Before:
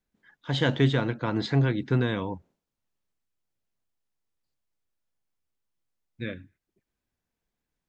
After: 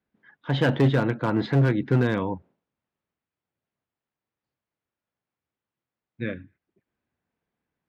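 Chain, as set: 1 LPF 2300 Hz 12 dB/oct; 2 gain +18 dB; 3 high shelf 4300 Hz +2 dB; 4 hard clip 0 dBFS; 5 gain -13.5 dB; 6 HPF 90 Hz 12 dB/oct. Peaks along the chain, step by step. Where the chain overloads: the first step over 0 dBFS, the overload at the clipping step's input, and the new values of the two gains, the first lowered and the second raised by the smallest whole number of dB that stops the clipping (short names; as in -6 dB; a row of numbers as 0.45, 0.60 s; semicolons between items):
-10.0, +8.0, +8.0, 0.0, -13.5, -9.5 dBFS; step 2, 8.0 dB; step 2 +10 dB, step 5 -5.5 dB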